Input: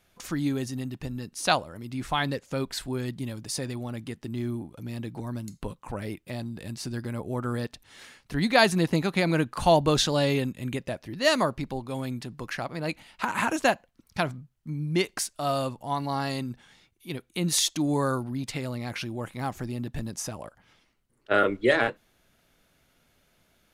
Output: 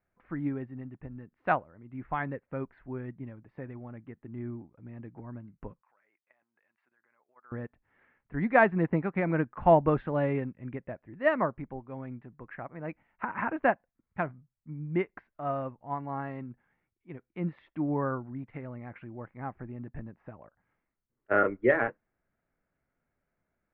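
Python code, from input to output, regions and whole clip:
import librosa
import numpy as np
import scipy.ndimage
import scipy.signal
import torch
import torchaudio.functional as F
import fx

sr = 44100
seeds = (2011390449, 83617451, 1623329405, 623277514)

y = fx.chain(x, sr, fx.highpass(hz=1200.0, slope=12),
    fx.level_steps(step_db=14), at=(5.82, 7.52))
y = scipy.signal.sosfilt(scipy.signal.butter(6, 2100.0, 'lowpass', fs=sr, output='sos'), y)
y = fx.upward_expand(y, sr, threshold_db=-45.0, expansion=1.5)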